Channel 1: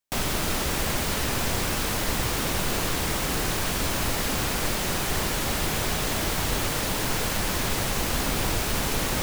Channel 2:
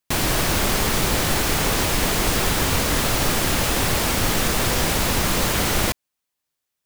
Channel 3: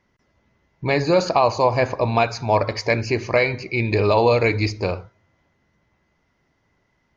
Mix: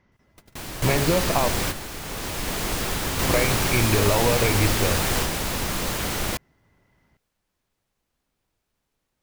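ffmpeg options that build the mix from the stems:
ffmpeg -i stem1.wav -i stem2.wav -i stem3.wav -filter_complex "[0:a]volume=1dB[link_01];[1:a]adelay=450,volume=-6dB,afade=type=in:start_time=2:duration=0.63:silence=0.398107[link_02];[2:a]acompressor=threshold=-22dB:ratio=4,bass=frequency=250:gain=4,treble=frequency=4000:gain=-5,volume=1dB,asplit=3[link_03][link_04][link_05];[link_03]atrim=end=1.49,asetpts=PTS-STARTPTS,afade=type=out:start_time=1.486:duration=0.004:curve=hsin[link_06];[link_04]atrim=start=1.49:end=3.19,asetpts=PTS-STARTPTS,volume=0[link_07];[link_05]atrim=start=3.19,asetpts=PTS-STARTPTS,afade=type=in:duration=0.004:curve=hsin[link_08];[link_06][link_07][link_08]concat=n=3:v=0:a=1,asplit=2[link_09][link_10];[link_10]apad=whole_len=406806[link_11];[link_01][link_11]sidechaingate=range=-53dB:threshold=-54dB:ratio=16:detection=peak[link_12];[link_12][link_02][link_09]amix=inputs=3:normalize=0" out.wav

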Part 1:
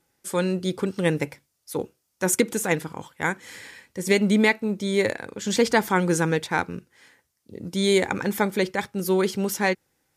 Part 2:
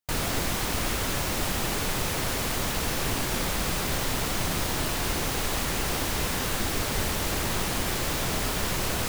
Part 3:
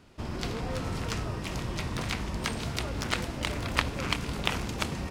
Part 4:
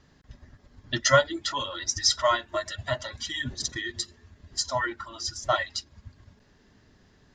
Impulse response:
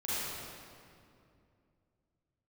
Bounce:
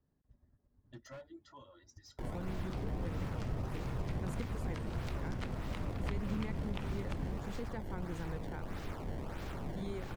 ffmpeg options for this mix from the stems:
-filter_complex "[0:a]adelay=2000,volume=-16.5dB[link_01];[1:a]acrusher=samples=20:mix=1:aa=0.000001:lfo=1:lforange=32:lforate=1.6,adelay=2100,volume=-10.5dB[link_02];[2:a]adelay=2300,volume=-5dB[link_03];[3:a]lowpass=7300,equalizer=frequency=2700:width=0.42:gain=-10,asoftclip=type=hard:threshold=-26dB,volume=-17.5dB[link_04];[link_01][link_02][link_03][link_04]amix=inputs=4:normalize=0,highshelf=frequency=2300:gain=-11,acrossover=split=200[link_05][link_06];[link_06]acompressor=threshold=-46dB:ratio=2.5[link_07];[link_05][link_07]amix=inputs=2:normalize=0"

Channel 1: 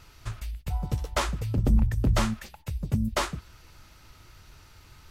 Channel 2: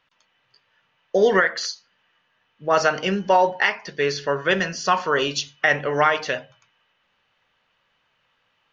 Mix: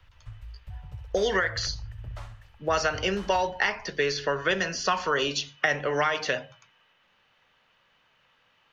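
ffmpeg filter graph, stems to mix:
ffmpeg -i stem1.wav -i stem2.wav -filter_complex "[0:a]firequalizer=gain_entry='entry(110,0);entry(220,-28);entry(640,-13);entry(7200,-22)':delay=0.05:min_phase=1,volume=-3dB,asplit=2[link_01][link_02];[link_02]volume=-10dB[link_03];[1:a]volume=2.5dB[link_04];[link_03]aecho=0:1:66|132|198|264|330:1|0.37|0.137|0.0507|0.0187[link_05];[link_01][link_04][link_05]amix=inputs=3:normalize=0,acrossover=split=95|240|1700|4200[link_06][link_07][link_08][link_09][link_10];[link_06]acompressor=threshold=-41dB:ratio=4[link_11];[link_07]acompressor=threshold=-45dB:ratio=4[link_12];[link_08]acompressor=threshold=-26dB:ratio=4[link_13];[link_09]acompressor=threshold=-31dB:ratio=4[link_14];[link_10]acompressor=threshold=-36dB:ratio=4[link_15];[link_11][link_12][link_13][link_14][link_15]amix=inputs=5:normalize=0" out.wav

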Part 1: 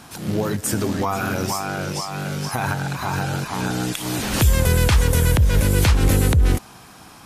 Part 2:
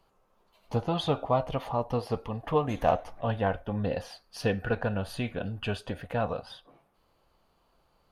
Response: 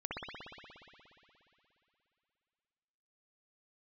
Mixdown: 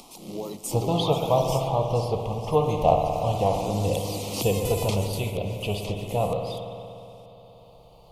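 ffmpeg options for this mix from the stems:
-filter_complex "[0:a]highpass=250,equalizer=frequency=1500:width=1.5:gain=4,volume=-1dB,afade=type=out:start_time=1.51:duration=0.29:silence=0.398107,afade=type=in:start_time=3.03:duration=0.44:silence=0.375837,afade=type=out:start_time=4.85:duration=0.47:silence=0.298538,asplit=2[link_01][link_02];[link_02]volume=-16.5dB[link_03];[1:a]equalizer=frequency=250:width_type=o:width=0.34:gain=-14.5,volume=2dB,asplit=2[link_04][link_05];[link_05]volume=-3.5dB[link_06];[2:a]atrim=start_sample=2205[link_07];[link_03][link_06]amix=inputs=2:normalize=0[link_08];[link_08][link_07]afir=irnorm=-1:irlink=0[link_09];[link_01][link_04][link_09]amix=inputs=3:normalize=0,acompressor=mode=upward:threshold=-41dB:ratio=2.5,asuperstop=centerf=1600:order=4:qfactor=1"

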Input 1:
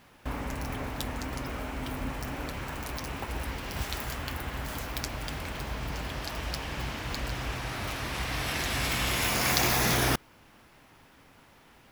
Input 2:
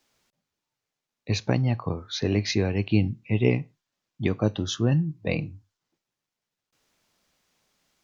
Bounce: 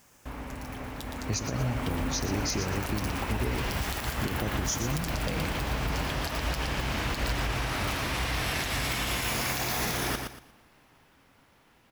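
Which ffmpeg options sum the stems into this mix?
ffmpeg -i stem1.wav -i stem2.wav -filter_complex "[0:a]dynaudnorm=framelen=250:gausssize=13:maxgain=12dB,volume=-5.5dB,asplit=2[link_01][link_02];[link_02]volume=-8dB[link_03];[1:a]highshelf=frequency=4800:gain=-9.5,acompressor=threshold=-22dB:ratio=6,aexciter=amount=8.4:drive=9.2:freq=5500,volume=-3dB,asplit=2[link_04][link_05];[link_05]volume=-10.5dB[link_06];[link_03][link_06]amix=inputs=2:normalize=0,aecho=0:1:117|234|351|468:1|0.27|0.0729|0.0197[link_07];[link_01][link_04][link_07]amix=inputs=3:normalize=0,aeval=exprs='(mod(3.55*val(0)+1,2)-1)/3.55':channel_layout=same,alimiter=limit=-19.5dB:level=0:latency=1:release=79" out.wav

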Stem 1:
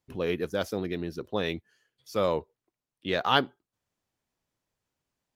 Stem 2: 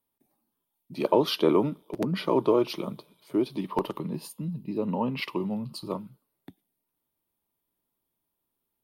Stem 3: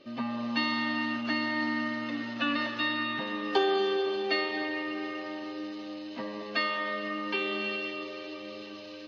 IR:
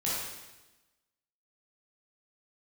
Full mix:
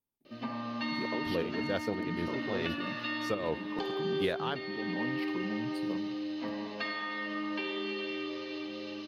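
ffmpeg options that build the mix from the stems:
-filter_complex "[0:a]lowpass=frequency=4000:poles=1,adelay=1150,volume=2.5dB[link_01];[1:a]lowshelf=frequency=370:gain=9,acompressor=threshold=-22dB:ratio=6,volume=-12.5dB,asplit=2[link_02][link_03];[2:a]acompressor=threshold=-32dB:ratio=6,adelay=250,volume=-5.5dB,asplit=2[link_04][link_05];[link_05]volume=-4.5dB[link_06];[link_03]apad=whole_len=286701[link_07];[link_01][link_07]sidechaincompress=threshold=-44dB:ratio=8:attack=8.2:release=104[link_08];[3:a]atrim=start_sample=2205[link_09];[link_06][link_09]afir=irnorm=-1:irlink=0[link_10];[link_08][link_02][link_04][link_10]amix=inputs=4:normalize=0,alimiter=limit=-20dB:level=0:latency=1:release=500"

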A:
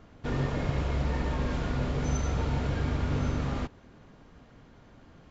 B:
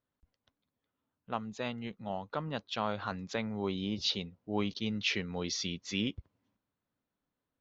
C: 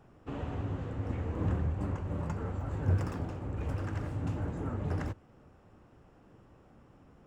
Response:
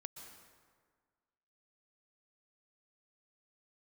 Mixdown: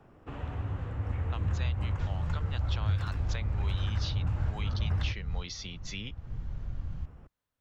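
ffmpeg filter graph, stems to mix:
-filter_complex "[0:a]asubboost=boost=4:cutoff=220,acompressor=threshold=-34dB:ratio=3,adelay=1750,volume=-1dB[link_01];[1:a]lowshelf=frequency=360:gain=-10.5,volume=2dB,asplit=2[link_02][link_03];[2:a]bass=frequency=250:gain=-2,treble=frequency=4000:gain=-8,volume=2.5dB[link_04];[link_03]apad=whole_len=311169[link_05];[link_01][link_05]sidechaincompress=threshold=-41dB:ratio=8:attack=16:release=336[link_06];[link_06][link_02][link_04]amix=inputs=3:normalize=0,asubboost=boost=5:cutoff=120,acrossover=split=160|730|1800[link_07][link_08][link_09][link_10];[link_07]acompressor=threshold=-27dB:ratio=4[link_11];[link_08]acompressor=threshold=-48dB:ratio=4[link_12];[link_09]acompressor=threshold=-47dB:ratio=4[link_13];[link_10]acompressor=threshold=-41dB:ratio=4[link_14];[link_11][link_12][link_13][link_14]amix=inputs=4:normalize=0"

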